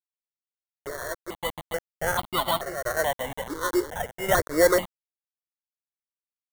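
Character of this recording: a quantiser's noise floor 6-bit, dither none; tremolo saw down 0.7 Hz, depth 55%; aliases and images of a low sample rate 2.5 kHz, jitter 0%; notches that jump at a steady rate 2.3 Hz 710–1700 Hz

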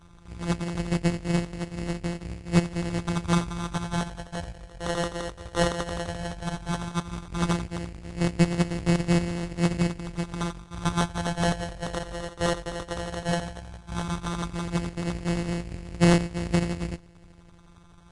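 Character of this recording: a buzz of ramps at a fixed pitch in blocks of 256 samples; phasing stages 6, 0.14 Hz, lowest notch 240–1300 Hz; aliases and images of a low sample rate 2.4 kHz, jitter 0%; Vorbis

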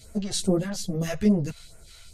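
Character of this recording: phasing stages 2, 2.4 Hz, lowest notch 260–3700 Hz; tremolo saw down 3.2 Hz, depth 35%; a shimmering, thickened sound

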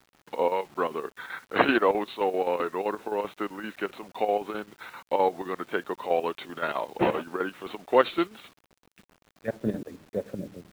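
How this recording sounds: chopped level 7.7 Hz, depth 60%, duty 70%; a quantiser's noise floor 10-bit, dither none

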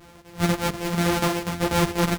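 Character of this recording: a buzz of ramps at a fixed pitch in blocks of 256 samples; chopped level 4.1 Hz, depth 65%, duty 85%; a shimmering, thickened sound

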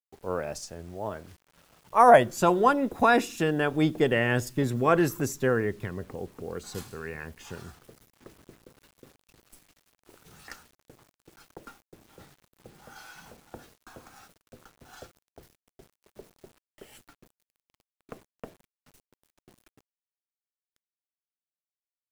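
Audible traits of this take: a quantiser's noise floor 10-bit, dither none

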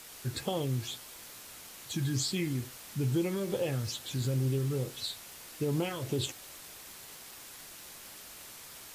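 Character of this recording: phasing stages 8, 2.3 Hz, lowest notch 770–2000 Hz; a quantiser's noise floor 8-bit, dither triangular; AAC

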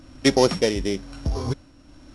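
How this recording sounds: a buzz of ramps at a fixed pitch in blocks of 8 samples; tremolo triangle 1 Hz, depth 60%; Vorbis

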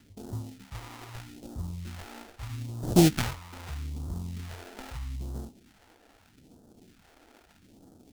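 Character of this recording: aliases and images of a low sample rate 1.1 kHz, jitter 20%; phasing stages 2, 0.79 Hz, lowest notch 130–2200 Hz

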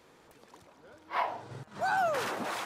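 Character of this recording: noise floor -60 dBFS; spectral tilt -3.5 dB/octave

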